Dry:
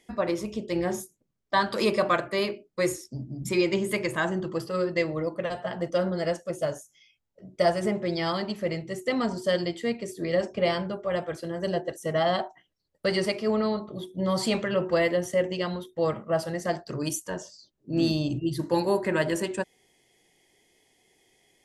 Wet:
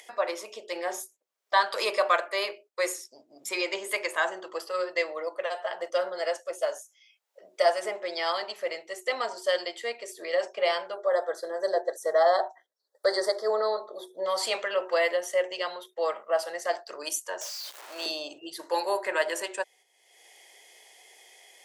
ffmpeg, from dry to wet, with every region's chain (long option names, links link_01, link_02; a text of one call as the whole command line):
ffmpeg -i in.wav -filter_complex "[0:a]asettb=1/sr,asplit=3[link_01][link_02][link_03];[link_01]atrim=end=10.964[link_04];[link_02]atrim=start=10.96:end=14.26,asetpts=PTS-STARTPTS,afade=type=in:duration=0.004:curve=qsin,afade=type=out:start_time=3.296:duration=0.004:curve=qsin,asuperstop=centerf=2600:order=8:qfactor=1.7,equalizer=frequency=450:width_type=o:width=1.2:gain=6[link_05];[link_03]atrim=start=14.256[link_06];[link_04][link_05]acrossfade=duration=0.004:curve1=hsin:curve2=qsin[link_07];[link_07][link_06]acrossfade=duration=0.004:curve1=qsin:curve2=hsin,asettb=1/sr,asplit=3[link_08][link_09][link_10];[link_08]atrim=end=17.414[link_11];[link_09]atrim=start=17.41:end=18.06,asetpts=PTS-STARTPTS,afade=type=in:duration=0.004:curve=qsin,afade=type=out:start_time=0.646:duration=0.004:curve=qsin,aeval=exprs='val(0)+0.5*0.0178*sgn(val(0))':channel_layout=same,highpass=560[link_12];[link_10]atrim=start=18.056[link_13];[link_11][link_12]acrossfade=duration=0.004:curve1=hsin:curve2=qsin[link_14];[link_14][link_13]acrossfade=duration=0.004:curve1=qsin:curve2=hsin,highpass=frequency=530:width=0.5412,highpass=frequency=530:width=1.3066,agate=range=-6dB:threshold=-55dB:ratio=16:detection=peak,acompressor=mode=upward:threshold=-41dB:ratio=2.5,volume=1.5dB" out.wav